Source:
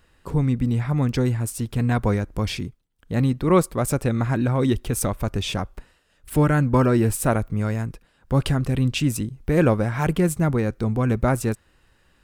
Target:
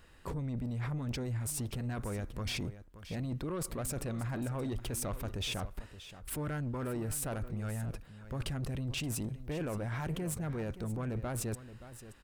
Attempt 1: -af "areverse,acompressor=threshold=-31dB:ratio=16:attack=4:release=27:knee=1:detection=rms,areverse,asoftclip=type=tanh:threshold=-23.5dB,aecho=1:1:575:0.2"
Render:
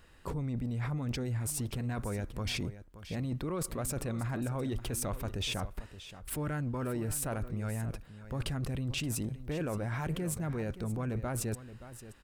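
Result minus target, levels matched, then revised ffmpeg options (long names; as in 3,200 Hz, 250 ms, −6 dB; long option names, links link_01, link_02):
soft clipping: distortion −10 dB
-af "areverse,acompressor=threshold=-31dB:ratio=16:attack=4:release=27:knee=1:detection=rms,areverse,asoftclip=type=tanh:threshold=-30.5dB,aecho=1:1:575:0.2"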